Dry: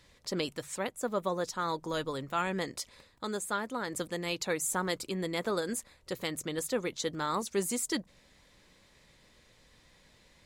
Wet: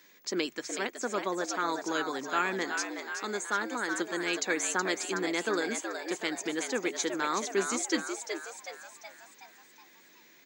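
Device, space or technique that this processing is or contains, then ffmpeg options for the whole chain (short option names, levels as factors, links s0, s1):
old television with a line whistle: -filter_complex "[0:a]asplit=7[s0][s1][s2][s3][s4][s5][s6];[s1]adelay=372,afreqshift=110,volume=0.447[s7];[s2]adelay=744,afreqshift=220,volume=0.237[s8];[s3]adelay=1116,afreqshift=330,volume=0.126[s9];[s4]adelay=1488,afreqshift=440,volume=0.0668[s10];[s5]adelay=1860,afreqshift=550,volume=0.0351[s11];[s6]adelay=2232,afreqshift=660,volume=0.0186[s12];[s0][s7][s8][s9][s10][s11][s12]amix=inputs=7:normalize=0,highpass=f=220:w=0.5412,highpass=f=220:w=1.3066,equalizer=f=340:t=q:w=4:g=6,equalizer=f=560:t=q:w=4:g=-5,equalizer=f=1600:t=q:w=4:g=7,equalizer=f=2300:t=q:w=4:g=5,equalizer=f=6500:t=q:w=4:g=9,lowpass=f=7700:w=0.5412,lowpass=f=7700:w=1.3066,aeval=exprs='val(0)+0.000891*sin(2*PI*15625*n/s)':c=same"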